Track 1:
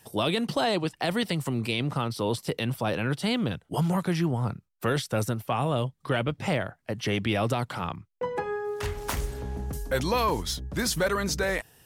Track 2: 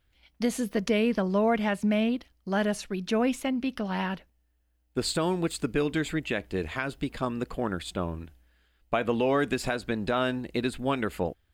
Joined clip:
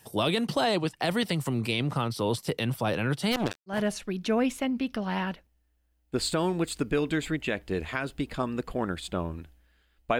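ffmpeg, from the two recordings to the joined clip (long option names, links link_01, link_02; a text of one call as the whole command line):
ffmpeg -i cue0.wav -i cue1.wav -filter_complex "[0:a]asplit=3[link_01][link_02][link_03];[link_01]afade=type=out:start_time=3.31:duration=0.02[link_04];[link_02]acrusher=bits=3:mix=0:aa=0.5,afade=type=in:start_time=3.31:duration=0.02,afade=type=out:start_time=3.82:duration=0.02[link_05];[link_03]afade=type=in:start_time=3.82:duration=0.02[link_06];[link_04][link_05][link_06]amix=inputs=3:normalize=0,apad=whole_dur=10.19,atrim=end=10.19,atrim=end=3.82,asetpts=PTS-STARTPTS[link_07];[1:a]atrim=start=2.49:end=9.02,asetpts=PTS-STARTPTS[link_08];[link_07][link_08]acrossfade=duration=0.16:curve1=tri:curve2=tri" out.wav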